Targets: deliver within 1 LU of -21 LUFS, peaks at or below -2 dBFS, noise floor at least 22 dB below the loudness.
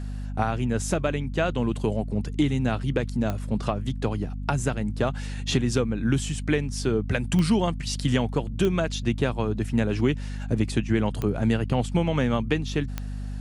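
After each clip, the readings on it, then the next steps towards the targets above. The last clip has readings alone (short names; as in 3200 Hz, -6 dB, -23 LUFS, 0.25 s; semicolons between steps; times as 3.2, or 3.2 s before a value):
clicks 5; hum 50 Hz; harmonics up to 250 Hz; hum level -29 dBFS; loudness -26.0 LUFS; peak -7.5 dBFS; loudness target -21.0 LUFS
-> de-click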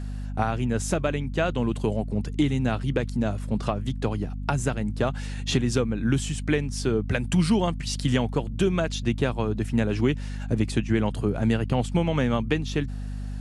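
clicks 0; hum 50 Hz; harmonics up to 250 Hz; hum level -29 dBFS
-> de-hum 50 Hz, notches 5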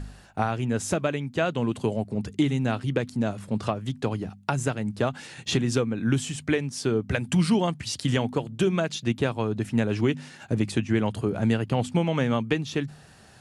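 hum none; loudness -27.0 LUFS; peak -9.0 dBFS; loudness target -21.0 LUFS
-> gain +6 dB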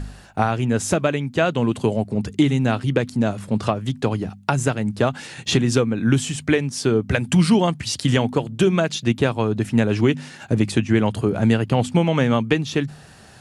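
loudness -21.0 LUFS; peak -3.0 dBFS; noise floor -45 dBFS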